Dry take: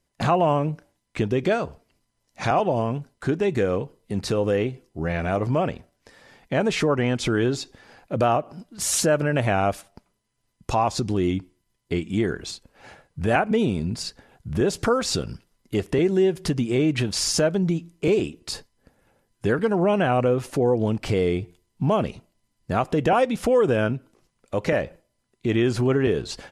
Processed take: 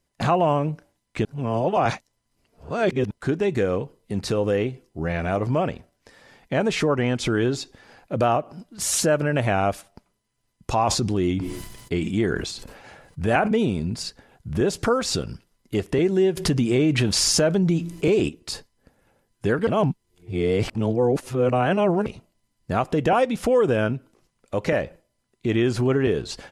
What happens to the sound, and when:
1.25–3.11 s: reverse
10.77–13.53 s: decay stretcher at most 47 dB/s
16.37–18.29 s: level flattener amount 50%
19.67–22.06 s: reverse

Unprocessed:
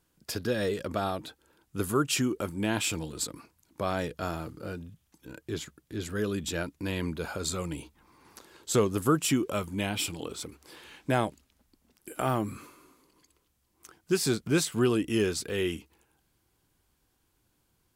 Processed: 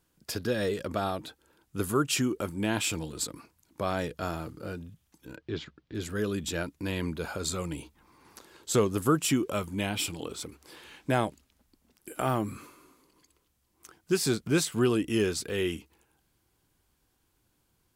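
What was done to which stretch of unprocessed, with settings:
5.36–5.95 s: low-pass 4.6 kHz 24 dB/octave

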